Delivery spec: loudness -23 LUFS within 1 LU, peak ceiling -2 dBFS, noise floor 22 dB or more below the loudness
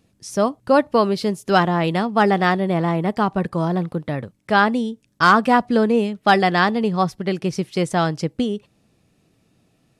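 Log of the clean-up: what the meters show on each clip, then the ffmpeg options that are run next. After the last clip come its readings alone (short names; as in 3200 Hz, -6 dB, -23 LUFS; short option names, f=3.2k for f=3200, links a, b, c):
loudness -19.5 LUFS; peak -3.0 dBFS; loudness target -23.0 LUFS
-> -af "volume=-3.5dB"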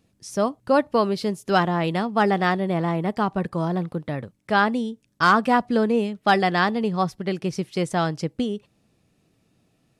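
loudness -23.0 LUFS; peak -6.5 dBFS; noise floor -67 dBFS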